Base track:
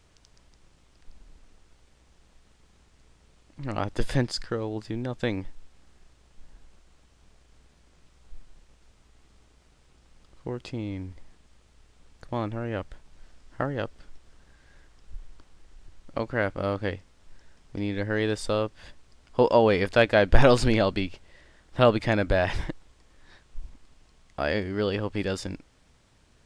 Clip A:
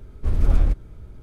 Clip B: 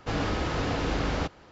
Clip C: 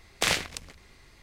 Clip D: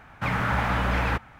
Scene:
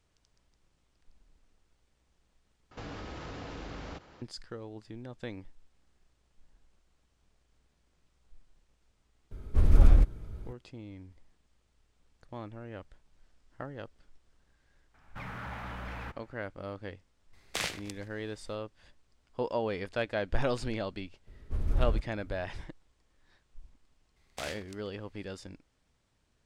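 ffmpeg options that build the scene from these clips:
ffmpeg -i bed.wav -i cue0.wav -i cue1.wav -i cue2.wav -i cue3.wav -filter_complex "[1:a]asplit=2[link_01][link_02];[3:a]asplit=2[link_03][link_04];[0:a]volume=-12.5dB[link_05];[2:a]acompressor=threshold=-47dB:ratio=2.5:attack=29:release=44:knee=1:detection=peak[link_06];[4:a]asoftclip=type=tanh:threshold=-18.5dB[link_07];[link_05]asplit=2[link_08][link_09];[link_08]atrim=end=2.714[link_10];[link_06]atrim=end=1.51,asetpts=PTS-STARTPTS,volume=-3dB[link_11];[link_09]atrim=start=4.216[link_12];[link_01]atrim=end=1.22,asetpts=PTS-STARTPTS,volume=-1.5dB,afade=type=in:duration=0.004:curve=hsin,afade=type=out:start_time=1.216:duration=0.004:curve=hsin,adelay=9310[link_13];[link_07]atrim=end=1.39,asetpts=PTS-STARTPTS,volume=-14.5dB,afade=type=in:duration=0.004:curve=hsin,afade=type=out:start_time=1.386:duration=0.004:curve=hsin,adelay=14940[link_14];[link_03]atrim=end=1.22,asetpts=PTS-STARTPTS,volume=-8.5dB,afade=type=in:duration=0.004:curve=hsin,afade=type=out:start_time=1.216:duration=0.004:curve=hsin,adelay=17330[link_15];[link_02]atrim=end=1.22,asetpts=PTS-STARTPTS,volume=-10.5dB,afade=type=in:duration=0.004:curve=hsin,afade=type=out:start_time=1.216:duration=0.004:curve=hsin,adelay=21270[link_16];[link_04]atrim=end=1.22,asetpts=PTS-STARTPTS,volume=-16.5dB,afade=type=in:duration=0.004:curve=hsin,afade=type=out:start_time=1.216:duration=0.004:curve=hsin,adelay=24160[link_17];[link_10][link_11]acrossfade=duration=0.004:curve1=hsin:curve2=hsin[link_18];[link_18][link_12]acrossfade=duration=0.004:curve1=hsin:curve2=hsin[link_19];[link_19][link_13][link_14][link_15][link_16][link_17]amix=inputs=6:normalize=0" out.wav

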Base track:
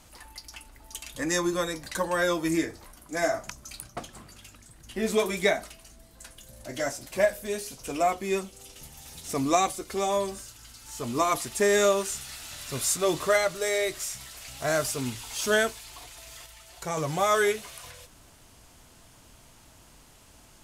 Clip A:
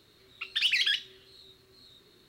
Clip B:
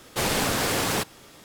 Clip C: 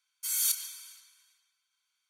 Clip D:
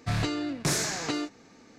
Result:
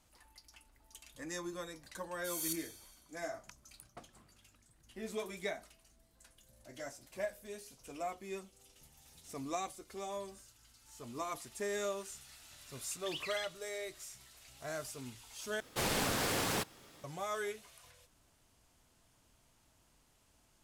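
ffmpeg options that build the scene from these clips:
ffmpeg -i bed.wav -i cue0.wav -i cue1.wav -i cue2.wav -filter_complex "[0:a]volume=-15.5dB,asplit=2[link_01][link_02];[link_01]atrim=end=15.604[link_03];[2:a]atrim=end=1.44,asetpts=PTS-STARTPTS,volume=-9dB[link_04];[link_02]atrim=start=17.036[link_05];[3:a]atrim=end=2.09,asetpts=PTS-STARTPTS,volume=-11dB,afade=type=in:duration=0.004:curve=hsin,afade=type=out:start_time=2.086:duration=0.004:curve=hsin,adelay=2010[link_06];[1:a]atrim=end=2.28,asetpts=PTS-STARTPTS,volume=-17.5dB,afade=type=in:duration=0.004:curve=hsin,afade=type=out:start_time=2.276:duration=0.004:curve=hsin,adelay=12500[link_07];[link_03][link_04]acrossfade=duration=0.004:curve1=hsin:curve2=hsin[link_08];[link_08][link_05]acrossfade=duration=0.004:curve1=hsin:curve2=hsin[link_09];[link_09][link_06][link_07]amix=inputs=3:normalize=0" out.wav

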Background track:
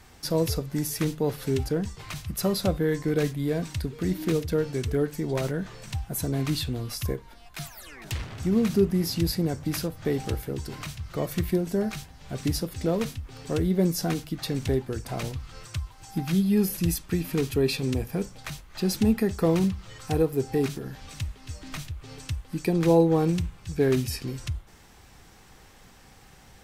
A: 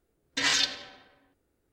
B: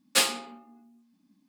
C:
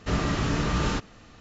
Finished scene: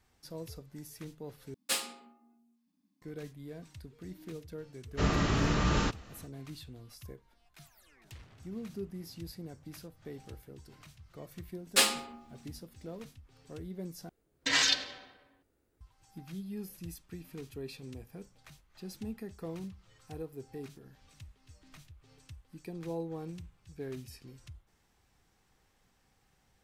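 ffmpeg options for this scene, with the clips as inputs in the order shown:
ffmpeg -i bed.wav -i cue0.wav -i cue1.wav -i cue2.wav -filter_complex "[2:a]asplit=2[link_01][link_02];[0:a]volume=-18.5dB[link_03];[link_01]highshelf=frequency=7600:gain=5[link_04];[link_03]asplit=3[link_05][link_06][link_07];[link_05]atrim=end=1.544[link_08];[link_04]atrim=end=1.48,asetpts=PTS-STARTPTS,volume=-11dB[link_09];[link_06]atrim=start=3.016:end=14.094[link_10];[1:a]atrim=end=1.72,asetpts=PTS-STARTPTS,volume=-1.5dB[link_11];[link_07]atrim=start=15.806[link_12];[3:a]atrim=end=1.4,asetpts=PTS-STARTPTS,volume=-2.5dB,afade=type=in:duration=0.1,afade=type=out:start_time=1.3:duration=0.1,adelay=4910[link_13];[link_02]atrim=end=1.48,asetpts=PTS-STARTPTS,volume=-2dB,afade=type=in:duration=0.004:curve=hsin,afade=type=out:start_time=1.476:duration=0.004:curve=hsin,adelay=11610[link_14];[link_08][link_09]acrossfade=duration=0.004:curve1=hsin:curve2=hsin[link_15];[link_15][link_10]acrossfade=duration=0.004:curve1=hsin:curve2=hsin[link_16];[link_16][link_11]acrossfade=duration=0.004:curve1=hsin:curve2=hsin[link_17];[link_17][link_12]acrossfade=duration=0.004:curve1=hsin:curve2=hsin[link_18];[link_18][link_13][link_14]amix=inputs=3:normalize=0" out.wav

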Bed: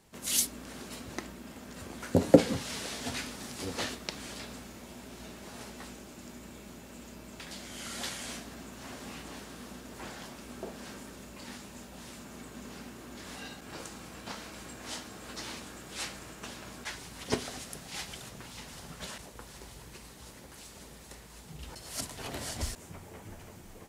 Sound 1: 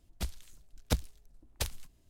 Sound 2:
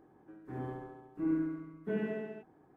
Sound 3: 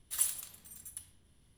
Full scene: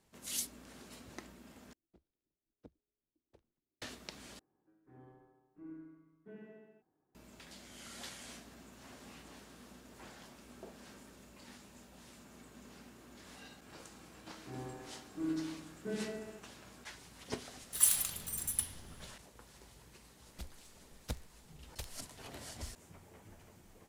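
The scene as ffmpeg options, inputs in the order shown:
ffmpeg -i bed.wav -i cue0.wav -i cue1.wav -i cue2.wav -filter_complex "[1:a]asplit=2[link_01][link_02];[2:a]asplit=2[link_03][link_04];[0:a]volume=-10dB[link_05];[link_01]bandpass=frequency=340:width_type=q:width=2.2:csg=0[link_06];[3:a]dynaudnorm=framelen=160:gausssize=3:maxgain=15.5dB[link_07];[link_02]dynaudnorm=framelen=110:gausssize=3:maxgain=7dB[link_08];[link_05]asplit=3[link_09][link_10][link_11];[link_09]atrim=end=1.734[link_12];[link_06]atrim=end=2.09,asetpts=PTS-STARTPTS,volume=-16.5dB[link_13];[link_10]atrim=start=3.816:end=4.394[link_14];[link_03]atrim=end=2.76,asetpts=PTS-STARTPTS,volume=-18dB[link_15];[link_11]atrim=start=7.146[link_16];[link_04]atrim=end=2.76,asetpts=PTS-STARTPTS,volume=-5dB,afade=type=in:duration=0.004:curve=hsin,afade=type=out:start_time=2.756:duration=0.004:curve=hsin,adelay=13980[link_17];[link_07]atrim=end=1.57,asetpts=PTS-STARTPTS,volume=-4dB,afade=type=in:duration=0.004:curve=hsin,afade=type=out:start_time=1.566:duration=0.004:curve=hsin,adelay=17620[link_18];[link_08]atrim=end=2.09,asetpts=PTS-STARTPTS,volume=-18dB,afade=type=in:duration=0.004:curve=hsin,afade=type=out:start_time=2.086:duration=0.004:curve=hsin,adelay=20180[link_19];[link_12][link_13]acrossfade=duration=0.004:curve1=hsin:curve2=hsin[link_20];[link_20][link_14]acrossfade=duration=0.004:curve1=hsin:curve2=hsin[link_21];[link_21][link_15]acrossfade=duration=0.004:curve1=hsin:curve2=hsin[link_22];[link_22][link_16]acrossfade=duration=0.004:curve1=hsin:curve2=hsin[link_23];[link_23][link_17][link_18][link_19]amix=inputs=4:normalize=0" out.wav

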